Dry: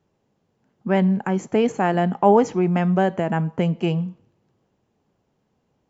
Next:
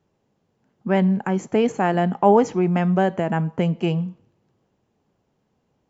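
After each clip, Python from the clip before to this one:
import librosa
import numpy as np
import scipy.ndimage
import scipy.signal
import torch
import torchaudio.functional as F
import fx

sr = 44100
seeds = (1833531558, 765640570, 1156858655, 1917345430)

y = x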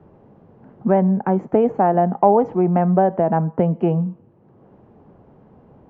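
y = scipy.signal.sosfilt(scipy.signal.butter(2, 1100.0, 'lowpass', fs=sr, output='sos'), x)
y = fx.dynamic_eq(y, sr, hz=700.0, q=1.1, threshold_db=-31.0, ratio=4.0, max_db=7)
y = fx.band_squash(y, sr, depth_pct=70)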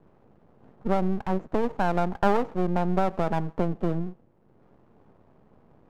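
y = np.maximum(x, 0.0)
y = y * librosa.db_to_amplitude(-5.0)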